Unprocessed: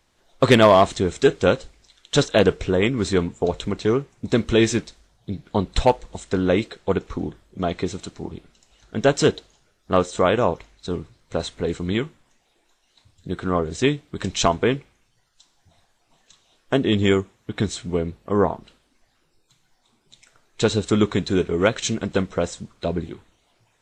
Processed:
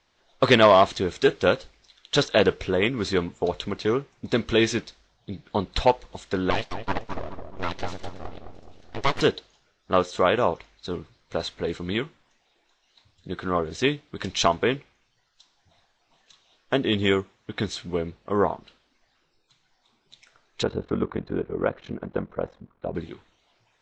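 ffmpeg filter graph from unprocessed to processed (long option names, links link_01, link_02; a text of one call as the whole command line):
ffmpeg -i in.wav -filter_complex "[0:a]asettb=1/sr,asplit=3[link_01][link_02][link_03];[link_01]atrim=end=6.504[link_04];[link_02]atrim=start=6.5:end=9.21,asetpts=PTS-STARTPTS,afade=type=in:duration=0.004:curve=qsin,afade=type=out:start_time=2.706:duration=0.004:curve=qsin,aeval=exprs='abs(val(0))':channel_layout=same,asplit=2[link_05][link_06];[link_06]adelay=212,lowpass=frequency=1100:poles=1,volume=-6dB,asplit=2[link_07][link_08];[link_08]adelay=212,lowpass=frequency=1100:poles=1,volume=0.55,asplit=2[link_09][link_10];[link_10]adelay=212,lowpass=frequency=1100:poles=1,volume=0.55,asplit=2[link_11][link_12];[link_12]adelay=212,lowpass=frequency=1100:poles=1,volume=0.55,asplit=2[link_13][link_14];[link_14]adelay=212,lowpass=frequency=1100:poles=1,volume=0.55,asplit=2[link_15][link_16];[link_16]adelay=212,lowpass=frequency=1100:poles=1,volume=0.55,asplit=2[link_17][link_18];[link_18]adelay=212,lowpass=frequency=1100:poles=1,volume=0.55[link_19];[link_05][link_07][link_09][link_11][link_13][link_15][link_17][link_19]amix=inputs=8:normalize=0,atrim=end_sample=119511[link_20];[link_03]atrim=start=9.206[link_21];[link_04][link_20]acrossfade=duration=0.004:curve1=hsin:curve2=qsin[link_22];[link_22][link_21]acrossfade=duration=0.004:curve1=qsin:curve2=hsin,asettb=1/sr,asplit=3[link_23][link_24][link_25];[link_23]atrim=end=20.634[link_26];[link_24]atrim=start=20.63:end=22.95,asetpts=PTS-STARTPTS,afade=type=in:duration=0.004:curve=qsin,afade=type=out:start_time=2.316:duration=0.004:curve=qsin,lowpass=1200,aeval=exprs='val(0)*sin(2*PI*22*n/s)':channel_layout=same[link_27];[link_25]atrim=start=22.946[link_28];[link_26][link_27]acrossfade=duration=0.004:curve1=hsin:curve2=qsin[link_29];[link_29][link_28]acrossfade=duration=0.004:curve1=qsin:curve2=hsin,lowpass=frequency=5900:width=0.5412,lowpass=frequency=5900:width=1.3066,lowshelf=frequency=400:gain=-7" out.wav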